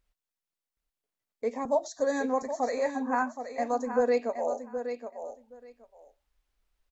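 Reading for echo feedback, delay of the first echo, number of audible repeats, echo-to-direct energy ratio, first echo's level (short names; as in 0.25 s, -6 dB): 16%, 0.771 s, 2, -9.0 dB, -9.0 dB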